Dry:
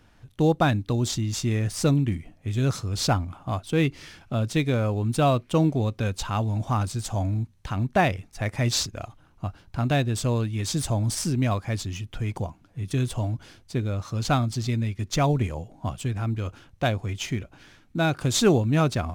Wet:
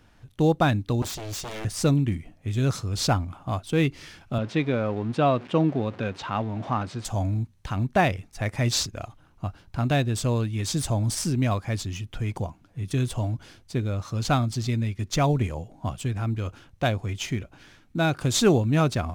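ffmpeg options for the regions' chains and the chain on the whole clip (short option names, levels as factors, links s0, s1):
-filter_complex "[0:a]asettb=1/sr,asplit=3[s0][s1][s2];[s0]atrim=end=1.024[s3];[s1]atrim=start=1.02:end=1.65,asetpts=PTS-STARTPTS,afade=t=in:d=0.004:c=qsin,afade=t=out:st=0.626:d=0.004:c=qsin,aeval=exprs='0.0376*(abs(mod(val(0)/0.0376+3,4)-2)-1)':c=same,bandreject=f=460:w=7.6[s4];[s2]atrim=start=1.646[s5];[s3][s4]acrossfade=d=0.004:c1=hsin:c2=qsin[s6];[s6][s5]acrossfade=d=0.004:c1=qsin:c2=hsin,asettb=1/sr,asplit=3[s7][s8][s9];[s7]atrim=end=4.384[s10];[s8]atrim=start=4.38:end=7.05,asetpts=PTS-STARTPTS,afade=t=in:d=0.004:c=qsin,afade=t=out:st=2.666:d=0.004:c=qsin,aeval=exprs='val(0)+0.5*0.0168*sgn(val(0))':c=same,highpass=160,lowpass=3000[s11];[s9]atrim=start=7.046[s12];[s10][s11]acrossfade=d=0.004:c1=hsin:c2=qsin[s13];[s13][s12]acrossfade=d=0.004:c1=qsin:c2=hsin"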